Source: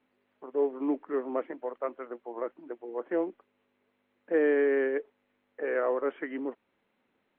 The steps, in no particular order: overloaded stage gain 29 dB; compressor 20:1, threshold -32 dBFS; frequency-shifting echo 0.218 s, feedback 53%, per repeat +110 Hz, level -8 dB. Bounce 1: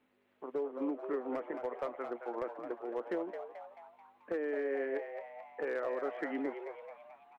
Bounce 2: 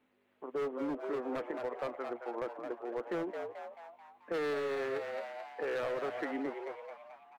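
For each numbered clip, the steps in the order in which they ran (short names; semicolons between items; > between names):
compressor > overloaded stage > frequency-shifting echo; overloaded stage > frequency-shifting echo > compressor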